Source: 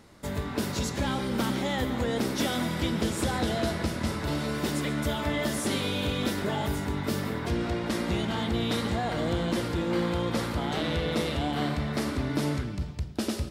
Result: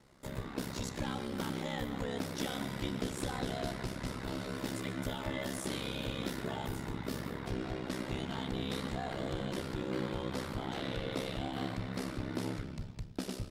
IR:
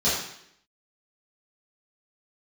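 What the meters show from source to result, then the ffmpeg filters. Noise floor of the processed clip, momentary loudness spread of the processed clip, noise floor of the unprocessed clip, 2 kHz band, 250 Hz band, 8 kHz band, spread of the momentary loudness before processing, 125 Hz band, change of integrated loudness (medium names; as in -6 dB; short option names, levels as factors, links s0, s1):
-45 dBFS, 3 LU, -36 dBFS, -9.0 dB, -9.0 dB, -9.0 dB, 3 LU, -9.0 dB, -9.0 dB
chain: -af "aeval=exprs='val(0)*sin(2*PI*33*n/s)':c=same,volume=0.501"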